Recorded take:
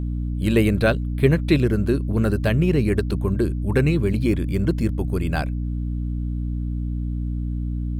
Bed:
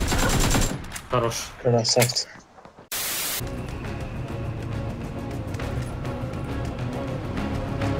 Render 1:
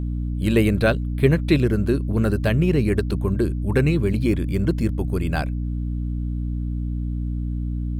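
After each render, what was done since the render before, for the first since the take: no audible change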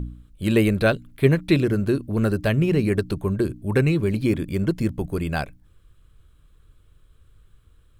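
de-hum 60 Hz, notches 5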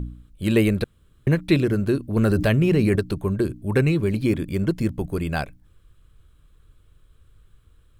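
0.84–1.27 s: room tone; 2.16–2.96 s: level flattener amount 70%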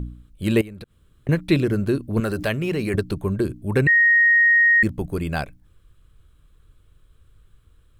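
0.61–1.29 s: compression 16:1, threshold -33 dBFS; 2.20–2.94 s: bass shelf 340 Hz -9.5 dB; 3.87–4.83 s: bleep 1.87 kHz -12 dBFS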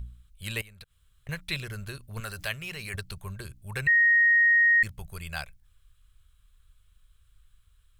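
amplifier tone stack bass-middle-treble 10-0-10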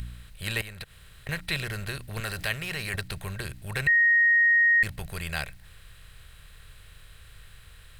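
spectral levelling over time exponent 0.6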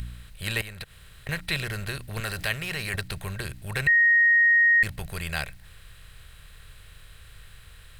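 trim +1.5 dB

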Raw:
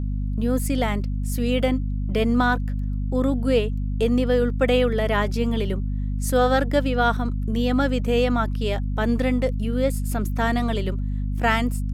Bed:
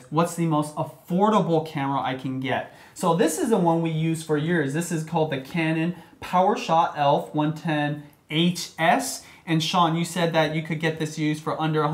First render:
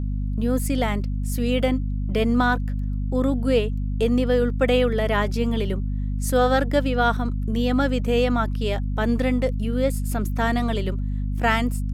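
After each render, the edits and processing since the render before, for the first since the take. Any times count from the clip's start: no audible change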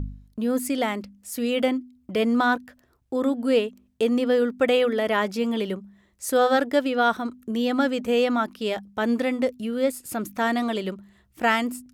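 de-hum 50 Hz, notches 5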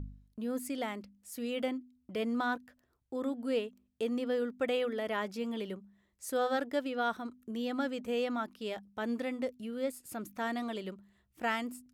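trim -11.5 dB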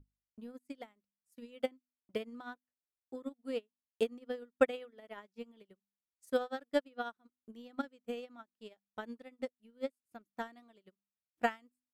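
transient shaper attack +9 dB, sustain -3 dB; upward expansion 2.5:1, over -45 dBFS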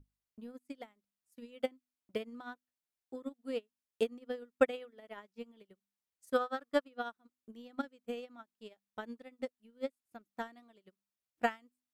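6.34–6.88 s: peaking EQ 1.2 kHz +11.5 dB 0.41 oct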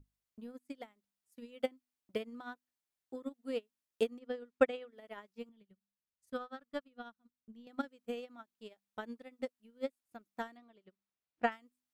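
4.19–4.93 s: distance through air 54 m; 5.49–7.67 s: FFT filter 210 Hz 0 dB, 320 Hz -11 dB, 1.9 kHz -9 dB, 3.8 kHz -8 dB, 7.9 kHz -13 dB; 10.57–11.52 s: distance through air 130 m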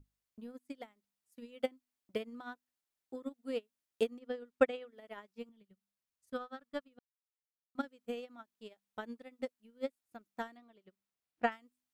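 6.99–7.75 s: mute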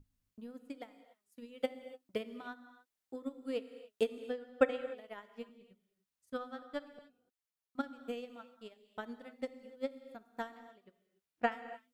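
gated-style reverb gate 320 ms flat, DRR 11.5 dB

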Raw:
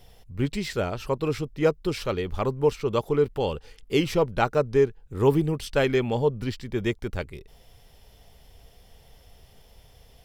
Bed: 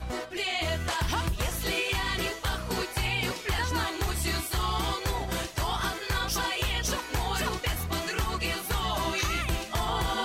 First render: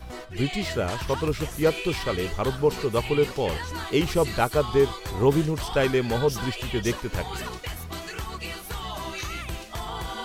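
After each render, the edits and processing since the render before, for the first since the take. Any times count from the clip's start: add bed -4.5 dB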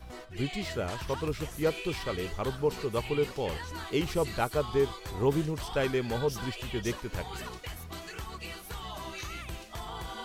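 trim -6.5 dB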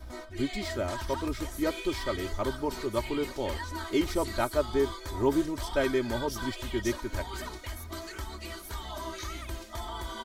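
peaking EQ 2.7 kHz -10.5 dB 0.22 oct; comb 3.2 ms, depth 78%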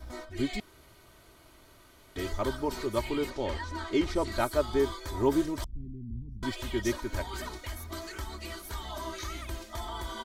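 0.60–2.16 s: room tone; 3.30–4.32 s: distance through air 59 m; 5.64–6.43 s: inverse Chebyshev low-pass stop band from 510 Hz, stop band 50 dB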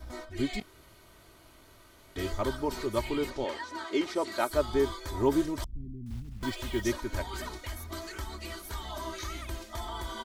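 0.59–2.41 s: doubling 21 ms -9 dB; 3.44–4.50 s: high-pass 290 Hz; 6.06–6.86 s: block-companded coder 5-bit

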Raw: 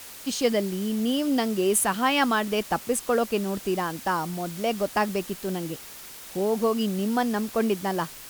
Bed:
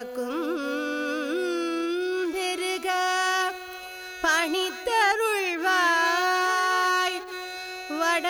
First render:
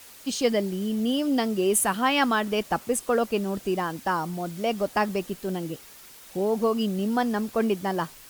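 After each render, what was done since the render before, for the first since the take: noise reduction 6 dB, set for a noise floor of -43 dBFS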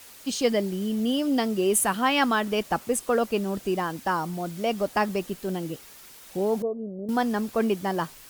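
6.62–7.09 s: four-pole ladder low-pass 650 Hz, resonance 55%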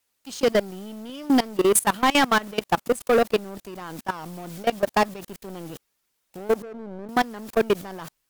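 level held to a coarse grid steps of 23 dB; waveshaping leveller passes 3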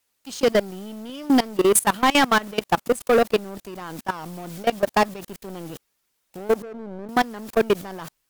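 trim +1.5 dB

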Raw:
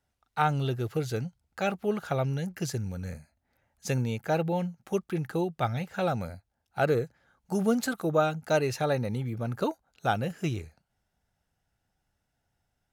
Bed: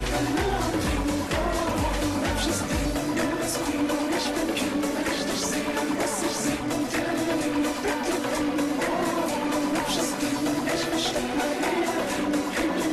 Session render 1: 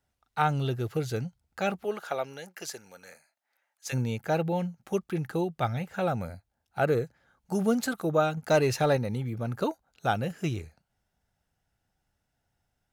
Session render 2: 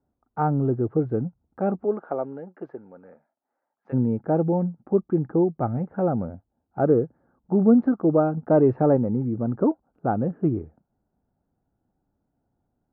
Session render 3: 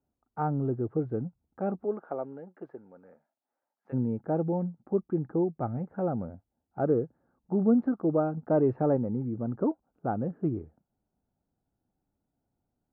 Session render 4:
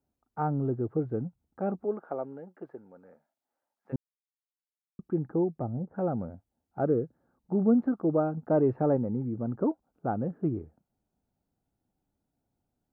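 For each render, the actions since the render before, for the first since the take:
1.83–3.92 s: high-pass 360 Hz -> 1.1 kHz; 5.67–6.93 s: dynamic bell 4.6 kHz, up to -6 dB, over -54 dBFS, Q 1.4; 8.37–8.97 s: waveshaping leveller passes 1
low-pass 1.2 kHz 24 dB/octave; peaking EQ 280 Hz +12.5 dB 1.4 oct
trim -6.5 dB
3.96–4.99 s: mute; 5.53–5.96 s: low-pass that closes with the level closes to 600 Hz, closed at -30.5 dBFS; 6.85–7.55 s: dynamic bell 880 Hz, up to -7 dB, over -46 dBFS, Q 1.7

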